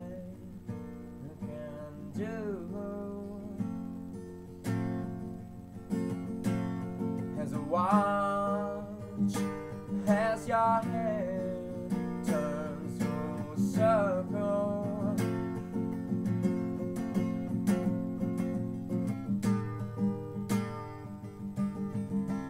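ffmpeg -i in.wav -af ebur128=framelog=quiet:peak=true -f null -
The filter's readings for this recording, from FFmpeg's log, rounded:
Integrated loudness:
  I:         -33.2 LUFS
  Threshold: -43.5 LUFS
Loudness range:
  LRA:         7.8 LU
  Threshold: -53.2 LUFS
  LRA low:   -39.0 LUFS
  LRA high:  -31.1 LUFS
True peak:
  Peak:      -12.9 dBFS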